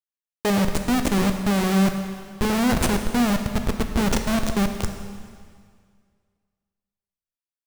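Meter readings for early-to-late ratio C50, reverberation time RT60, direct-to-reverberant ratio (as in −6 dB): 7.0 dB, 2.0 s, 5.5 dB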